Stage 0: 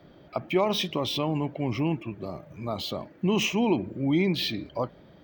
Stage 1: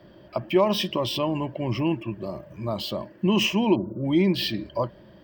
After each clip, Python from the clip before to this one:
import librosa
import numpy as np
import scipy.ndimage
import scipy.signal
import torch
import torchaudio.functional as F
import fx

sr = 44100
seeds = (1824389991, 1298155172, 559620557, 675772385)

y = fx.spec_erase(x, sr, start_s=3.76, length_s=0.29, low_hz=1500.0, high_hz=11000.0)
y = fx.ripple_eq(y, sr, per_octave=1.3, db=8)
y = y * librosa.db_to_amplitude(1.5)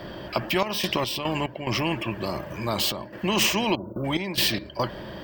y = fx.step_gate(x, sr, bpm=72, pattern='xxx.x.x.xxxxxx.', floor_db=-12.0, edge_ms=4.5)
y = fx.spectral_comp(y, sr, ratio=2.0)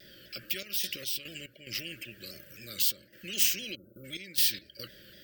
y = scipy.signal.sosfilt(scipy.signal.ellip(3, 1.0, 40, [560.0, 1400.0], 'bandstop', fs=sr, output='sos'), x)
y = F.preemphasis(torch.from_numpy(y), 0.9).numpy()
y = fx.vibrato_shape(y, sr, shape='saw_down', rate_hz=3.9, depth_cents=100.0)